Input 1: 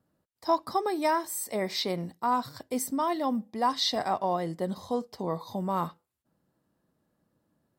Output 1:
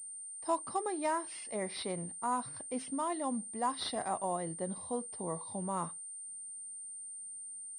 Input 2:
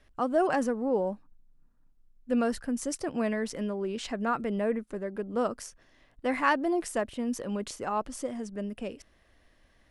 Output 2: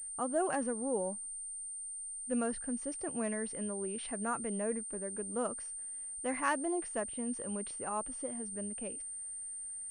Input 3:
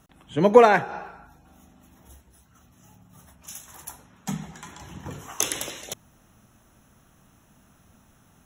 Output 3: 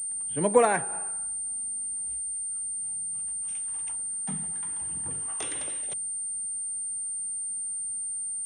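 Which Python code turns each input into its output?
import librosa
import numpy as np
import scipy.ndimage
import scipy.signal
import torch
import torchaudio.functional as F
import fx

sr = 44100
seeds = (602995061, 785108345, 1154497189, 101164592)

y = fx.pwm(x, sr, carrier_hz=8900.0)
y = y * 10.0 ** (-7.0 / 20.0)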